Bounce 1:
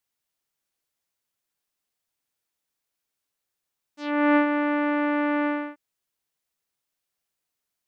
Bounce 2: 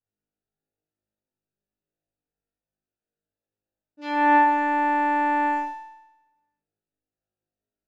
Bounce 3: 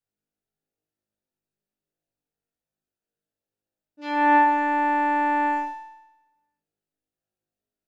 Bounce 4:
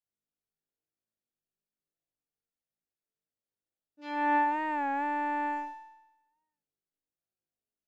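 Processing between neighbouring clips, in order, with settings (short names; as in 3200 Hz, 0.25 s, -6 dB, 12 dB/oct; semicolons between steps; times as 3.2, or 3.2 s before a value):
Wiener smoothing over 41 samples; flutter echo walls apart 3.3 m, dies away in 1 s
notches 50/100 Hz
record warp 33 1/3 rpm, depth 100 cents; gain -9 dB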